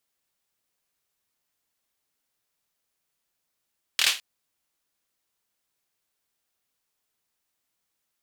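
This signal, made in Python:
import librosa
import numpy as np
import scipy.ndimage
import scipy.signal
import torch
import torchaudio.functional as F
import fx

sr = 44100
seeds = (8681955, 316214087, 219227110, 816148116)

y = fx.drum_clap(sr, seeds[0], length_s=0.21, bursts=4, spacing_ms=25, hz=3100.0, decay_s=0.29)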